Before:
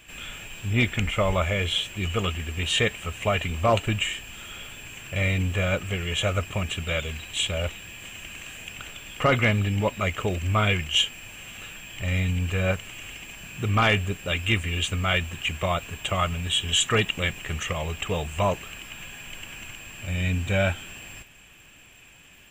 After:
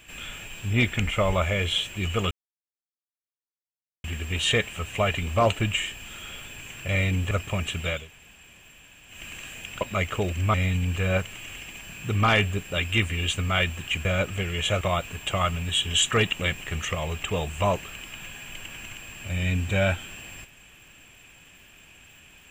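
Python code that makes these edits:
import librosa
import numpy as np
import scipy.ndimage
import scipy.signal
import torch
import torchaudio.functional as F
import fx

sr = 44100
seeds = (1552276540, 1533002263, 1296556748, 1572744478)

y = fx.edit(x, sr, fx.insert_silence(at_s=2.31, length_s=1.73),
    fx.move(start_s=5.58, length_s=0.76, to_s=15.59),
    fx.room_tone_fill(start_s=7.02, length_s=1.14, crossfade_s=0.24),
    fx.cut(start_s=8.84, length_s=1.03),
    fx.cut(start_s=10.6, length_s=1.48), tone=tone)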